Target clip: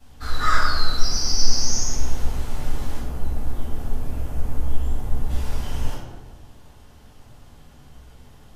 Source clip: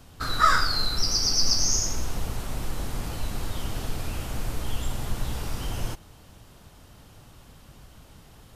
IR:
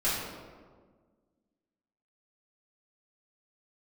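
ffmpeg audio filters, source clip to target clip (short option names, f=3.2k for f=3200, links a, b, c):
-filter_complex "[0:a]asettb=1/sr,asplit=3[a][b][c];[a]atrim=end=2.994[d];[b]atrim=start=2.99:end=5.3,asetpts=PTS-STARTPTS,afade=t=in:d=0.004:c=qsin,afade=t=out:st=2.306:d=0.004:c=qsin,equalizer=f=4k:w=0.4:g=-11[e];[c]atrim=start=5.296[f];[d][e]acrossfade=d=0.004:c1=hsin:c2=qsin[g];[g][f]acrossfade=d=0.004:c1=qsin:c2=hsin[h];[1:a]atrim=start_sample=2205,asetrate=57330,aresample=44100[i];[h][i]afir=irnorm=-1:irlink=0,volume=-8dB"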